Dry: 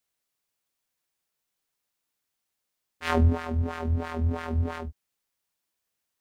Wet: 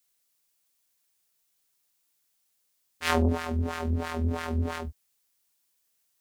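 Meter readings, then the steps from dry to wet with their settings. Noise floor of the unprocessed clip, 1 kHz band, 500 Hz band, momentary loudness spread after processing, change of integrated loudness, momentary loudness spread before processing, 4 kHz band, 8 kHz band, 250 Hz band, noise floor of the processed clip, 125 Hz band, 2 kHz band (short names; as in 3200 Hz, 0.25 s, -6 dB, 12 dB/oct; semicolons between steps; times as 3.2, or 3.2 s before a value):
-83 dBFS, +0.5 dB, +0.5 dB, 8 LU, -1.5 dB, 12 LU, +5.0 dB, n/a, +0.5 dB, -74 dBFS, -3.5 dB, +2.0 dB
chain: high shelf 3600 Hz +10.5 dB; core saturation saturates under 500 Hz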